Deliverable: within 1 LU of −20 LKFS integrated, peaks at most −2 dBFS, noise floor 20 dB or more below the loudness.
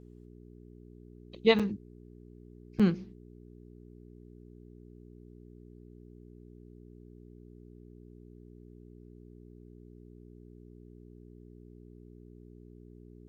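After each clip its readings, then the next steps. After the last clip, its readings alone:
number of dropouts 2; longest dropout 6.3 ms; mains hum 60 Hz; hum harmonics up to 420 Hz; level of the hum −50 dBFS; integrated loudness −29.0 LKFS; sample peak −11.5 dBFS; target loudness −20.0 LKFS
→ repair the gap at 0:01.59/0:02.79, 6.3 ms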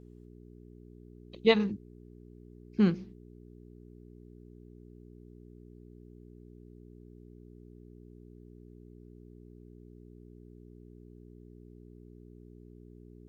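number of dropouts 0; mains hum 60 Hz; hum harmonics up to 420 Hz; level of the hum −50 dBFS
→ hum removal 60 Hz, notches 7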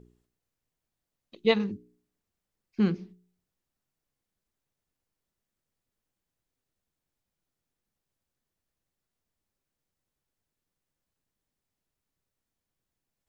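mains hum none found; integrated loudness −28.5 LKFS; sample peak −11.5 dBFS; target loudness −20.0 LKFS
→ level +8.5 dB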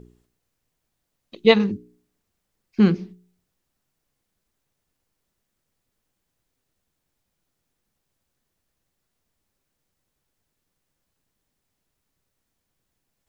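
integrated loudness −20.0 LKFS; sample peak −3.0 dBFS; background noise floor −79 dBFS

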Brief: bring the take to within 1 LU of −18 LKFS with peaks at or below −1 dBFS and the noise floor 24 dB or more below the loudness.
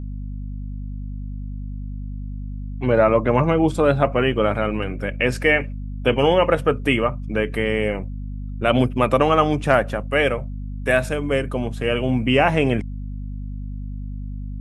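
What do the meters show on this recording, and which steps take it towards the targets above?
mains hum 50 Hz; hum harmonics up to 250 Hz; level of the hum −27 dBFS; integrated loudness −20.0 LKFS; sample peak −2.0 dBFS; target loudness −18.0 LKFS
→ mains-hum notches 50/100/150/200/250 Hz
level +2 dB
brickwall limiter −1 dBFS

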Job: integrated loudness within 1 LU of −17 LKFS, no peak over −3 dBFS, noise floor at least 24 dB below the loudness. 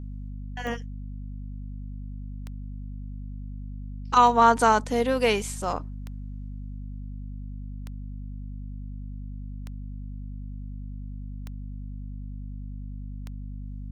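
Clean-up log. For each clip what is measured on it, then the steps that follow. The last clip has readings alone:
number of clicks 8; mains hum 50 Hz; hum harmonics up to 250 Hz; level of the hum −34 dBFS; integrated loudness −29.5 LKFS; sample peak −6.0 dBFS; target loudness −17.0 LKFS
→ click removal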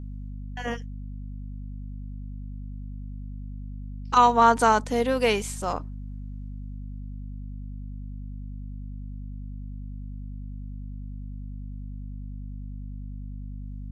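number of clicks 0; mains hum 50 Hz; hum harmonics up to 250 Hz; level of the hum −34 dBFS
→ mains-hum notches 50/100/150/200/250 Hz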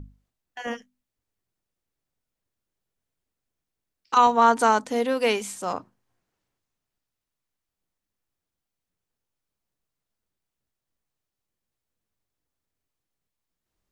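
mains hum none found; integrated loudness −21.5 LKFS; sample peak −6.0 dBFS; target loudness −17.0 LKFS
→ level +4.5 dB
brickwall limiter −3 dBFS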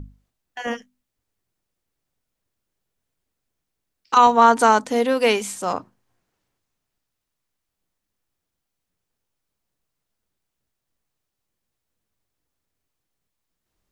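integrated loudness −17.5 LKFS; sample peak −3.0 dBFS; background noise floor −81 dBFS

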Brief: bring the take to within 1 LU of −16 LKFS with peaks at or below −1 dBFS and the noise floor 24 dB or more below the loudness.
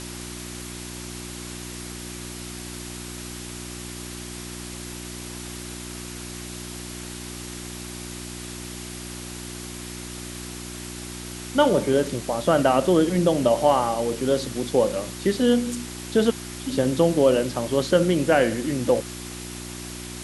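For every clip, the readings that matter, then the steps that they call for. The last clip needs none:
mains hum 60 Hz; hum harmonics up to 360 Hz; level of the hum −35 dBFS; background noise floor −36 dBFS; target noise floor −50 dBFS; integrated loudness −25.5 LKFS; sample peak −6.0 dBFS; target loudness −16.0 LKFS
→ hum removal 60 Hz, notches 6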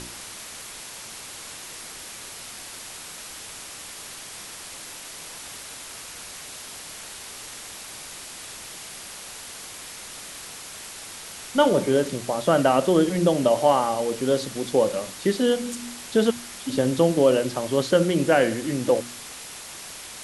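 mains hum none found; background noise floor −40 dBFS; target noise floor −47 dBFS
→ broadband denoise 7 dB, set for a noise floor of −40 dBFS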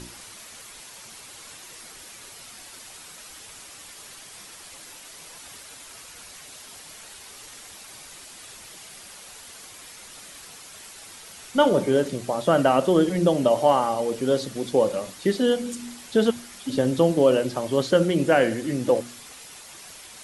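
background noise floor −44 dBFS; target noise floor −47 dBFS
→ broadband denoise 6 dB, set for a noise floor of −44 dBFS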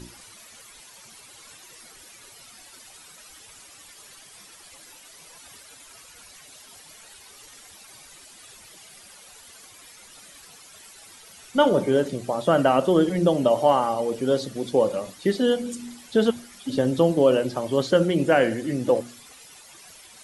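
background noise floor −48 dBFS; integrated loudness −22.5 LKFS; sample peak −6.5 dBFS; target loudness −16.0 LKFS
→ level +6.5 dB
brickwall limiter −1 dBFS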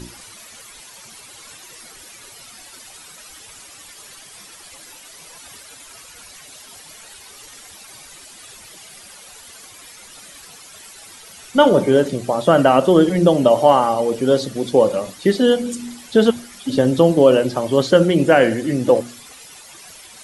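integrated loudness −16.0 LKFS; sample peak −1.0 dBFS; background noise floor −42 dBFS

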